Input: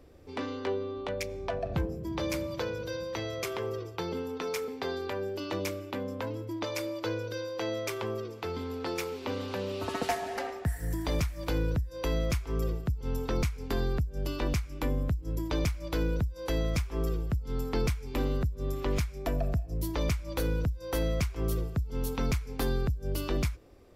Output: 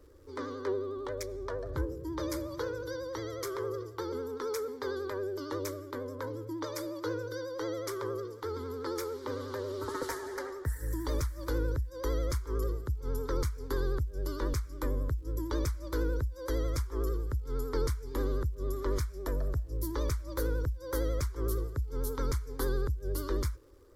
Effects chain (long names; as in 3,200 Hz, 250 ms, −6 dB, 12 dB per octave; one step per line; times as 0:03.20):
phaser with its sweep stopped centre 710 Hz, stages 6
surface crackle 270 per second −59 dBFS
pitch vibrato 11 Hz 66 cents